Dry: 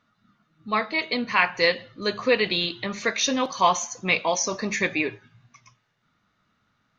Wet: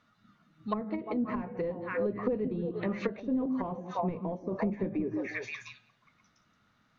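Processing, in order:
echo through a band-pass that steps 175 ms, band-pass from 240 Hz, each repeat 1.4 octaves, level −4 dB
soft clipping −17 dBFS, distortion −12 dB
treble cut that deepens with the level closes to 330 Hz, closed at −23 dBFS

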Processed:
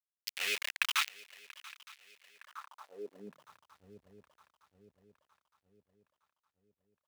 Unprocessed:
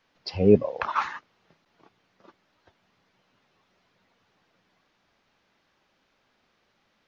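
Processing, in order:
centre clipping without the shift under −25 dBFS
feedback echo with a long and a short gap by turns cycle 913 ms, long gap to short 3 to 1, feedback 46%, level −20 dB
high-pass filter sweep 2,400 Hz → 61 Hz, 0:02.33–0:03.74

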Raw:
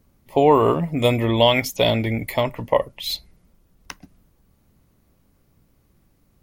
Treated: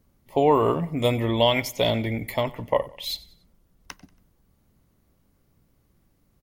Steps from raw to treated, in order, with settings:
notch filter 2,500 Hz, Q 28
repeating echo 93 ms, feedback 40%, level −20 dB
level −4 dB

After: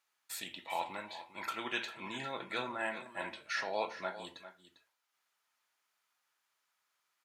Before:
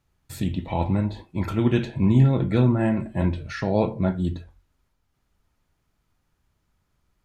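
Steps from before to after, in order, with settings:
high-pass filter 1,100 Hz 12 dB per octave
on a send: single-tap delay 400 ms −13.5 dB
on the sum: level −1 dB

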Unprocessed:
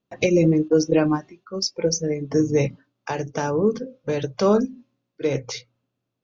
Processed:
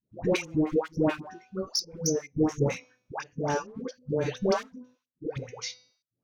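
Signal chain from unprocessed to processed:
hum removal 250.5 Hz, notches 33
asymmetric clip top −18.5 dBFS, bottom −10.5 dBFS
gate pattern "xxx..xx..x.xx" 140 BPM −24 dB
all-pass dispersion highs, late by 130 ms, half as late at 650 Hz
level −3 dB

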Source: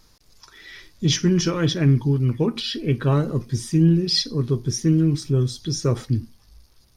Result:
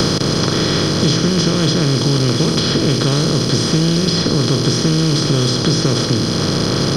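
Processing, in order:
compressor on every frequency bin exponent 0.2
multiband upward and downward compressor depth 100%
level −2.5 dB

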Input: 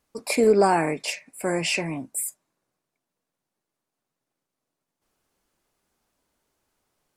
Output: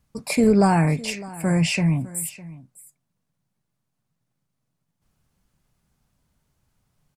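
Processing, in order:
low shelf with overshoot 230 Hz +13 dB, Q 1.5
single-tap delay 606 ms −19 dB

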